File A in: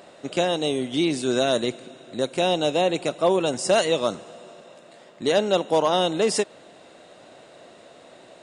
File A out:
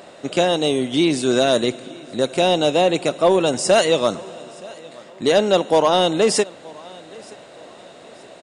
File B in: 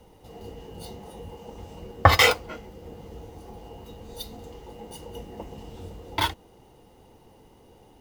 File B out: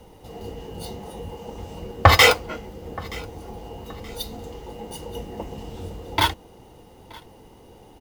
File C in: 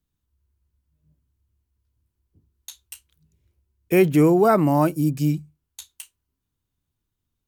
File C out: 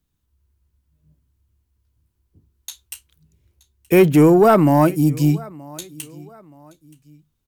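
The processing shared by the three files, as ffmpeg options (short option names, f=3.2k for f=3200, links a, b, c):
-af "aecho=1:1:925|1850:0.0631|0.0227,acontrast=65,volume=-1dB"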